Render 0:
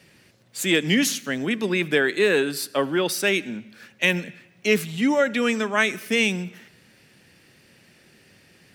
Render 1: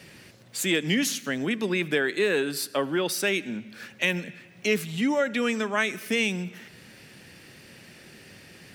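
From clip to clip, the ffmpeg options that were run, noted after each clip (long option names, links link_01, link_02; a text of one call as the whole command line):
ffmpeg -i in.wav -af "acompressor=threshold=-46dB:ratio=1.5,volume=6dB" out.wav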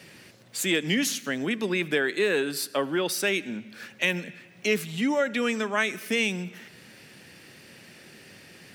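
ffmpeg -i in.wav -af "lowshelf=frequency=70:gain=-12" out.wav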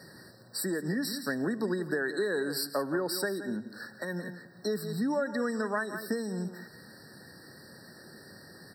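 ffmpeg -i in.wav -af "aecho=1:1:170:0.224,acompressor=threshold=-26dB:ratio=6,afftfilt=real='re*eq(mod(floor(b*sr/1024/1900),2),0)':imag='im*eq(mod(floor(b*sr/1024/1900),2),0)':win_size=1024:overlap=0.75" out.wav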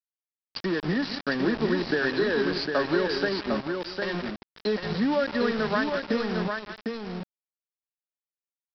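ffmpeg -i in.wav -af "aresample=11025,aeval=exprs='val(0)*gte(abs(val(0)),0.0178)':channel_layout=same,aresample=44100,aecho=1:1:754:0.562,volume=5dB" out.wav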